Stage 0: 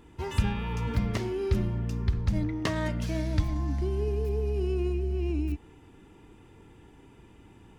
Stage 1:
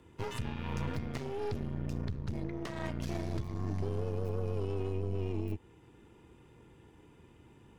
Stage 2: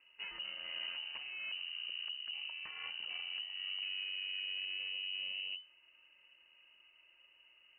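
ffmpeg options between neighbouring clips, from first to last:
-af "alimiter=limit=-23.5dB:level=0:latency=1:release=370,afreqshift=26,aeval=exprs='0.112*(cos(1*acos(clip(val(0)/0.112,-1,1)))-cos(1*PI/2))+0.0178*(cos(6*acos(clip(val(0)/0.112,-1,1)))-cos(6*PI/2))':c=same,volume=-5dB"
-af "lowpass=f=2.6k:t=q:w=0.5098,lowpass=f=2.6k:t=q:w=0.6013,lowpass=f=2.6k:t=q:w=0.9,lowpass=f=2.6k:t=q:w=2.563,afreqshift=-3000,volume=-7.5dB"

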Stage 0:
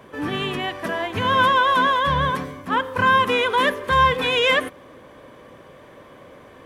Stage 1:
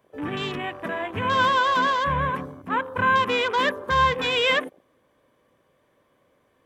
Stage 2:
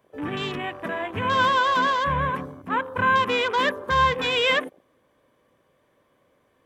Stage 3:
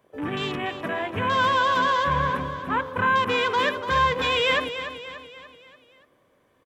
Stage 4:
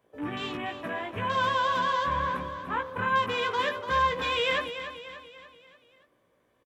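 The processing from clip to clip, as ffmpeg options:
-af "afwtdn=0.0316,crystalizer=i=1:c=0,volume=-3.5dB"
-af anull
-filter_complex "[0:a]asplit=2[a][b];[b]alimiter=limit=-17dB:level=0:latency=1,volume=-2dB[c];[a][c]amix=inputs=2:normalize=0,aecho=1:1:291|582|873|1164|1455:0.299|0.146|0.0717|0.0351|0.0172,volume=-4.5dB"
-filter_complex "[0:a]asplit=2[a][b];[b]adelay=17,volume=-5dB[c];[a][c]amix=inputs=2:normalize=0,volume=-6.5dB"

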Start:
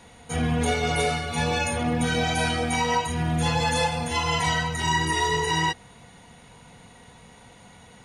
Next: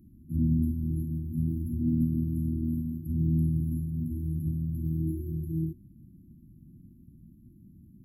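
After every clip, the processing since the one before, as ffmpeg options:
-af "afftfilt=real='re*(1-between(b*sr/4096,360,11000))':imag='im*(1-between(b*sr/4096,360,11000))':win_size=4096:overlap=0.75"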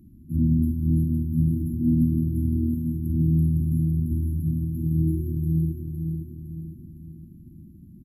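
-filter_complex "[0:a]asplit=2[a][b];[b]aecho=0:1:510|1020|1530|2040|2550|3060:0.531|0.244|0.112|0.0517|0.0238|0.0109[c];[a][c]amix=inputs=2:normalize=0,aresample=32000,aresample=44100,volume=4.5dB"

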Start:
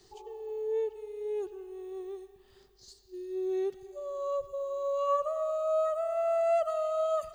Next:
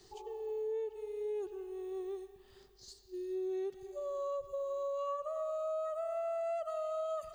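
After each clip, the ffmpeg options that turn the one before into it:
-af "acompressor=threshold=-35dB:ratio=6"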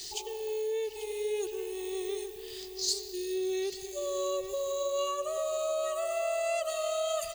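-filter_complex "[0:a]aexciter=amount=5.1:drive=7.4:freq=2k,asplit=2[a][b];[b]adelay=840,lowpass=f=2k:p=1,volume=-8dB,asplit=2[c][d];[d]adelay=840,lowpass=f=2k:p=1,volume=0.37,asplit=2[e][f];[f]adelay=840,lowpass=f=2k:p=1,volume=0.37,asplit=2[g][h];[h]adelay=840,lowpass=f=2k:p=1,volume=0.37[i];[c][e][g][i]amix=inputs=4:normalize=0[j];[a][j]amix=inputs=2:normalize=0,volume=4.5dB"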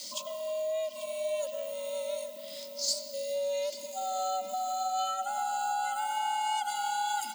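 -af "afreqshift=190"

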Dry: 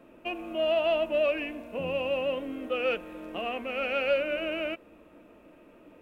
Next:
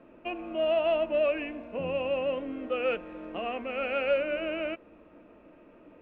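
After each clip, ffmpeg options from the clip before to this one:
-af "lowpass=2.6k"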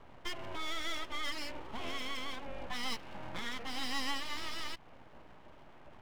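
-filter_complex "[0:a]acrossover=split=160|1300[a][b][c];[b]acompressor=threshold=-39dB:ratio=6[d];[a][d][c]amix=inputs=3:normalize=0,aeval=exprs='abs(val(0))':c=same,volume=1dB"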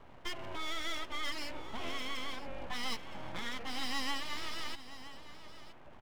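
-af "aecho=1:1:968:0.188"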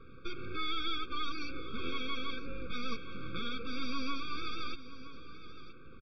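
-af "aresample=11025,aresample=44100,afftfilt=real='re*eq(mod(floor(b*sr/1024/540),2),0)':imag='im*eq(mod(floor(b*sr/1024/540),2),0)':win_size=1024:overlap=0.75,volume=4.5dB"

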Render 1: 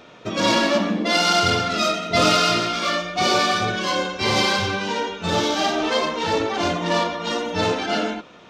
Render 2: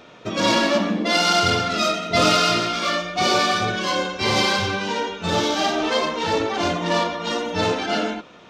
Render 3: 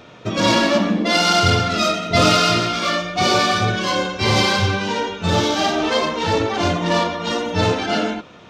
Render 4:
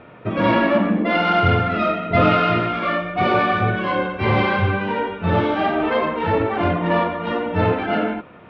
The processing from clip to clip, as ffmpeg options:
-af anull
-af "equalizer=f=94:w=0.97:g=8.5,volume=2dB"
-af "lowpass=f=2.4k:w=0.5412,lowpass=f=2.4k:w=1.3066"

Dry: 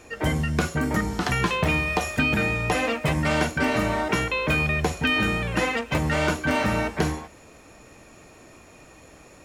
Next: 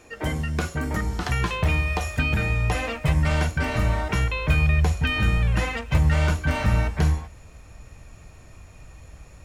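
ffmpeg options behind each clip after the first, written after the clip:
-af "asubboost=boost=9.5:cutoff=97,volume=-3dB"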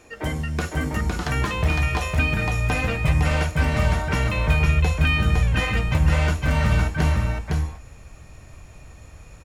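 -af "aecho=1:1:509:0.708"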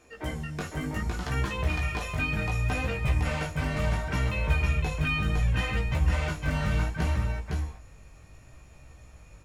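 -af "flanger=delay=15:depth=5.4:speed=0.68,volume=-4dB"

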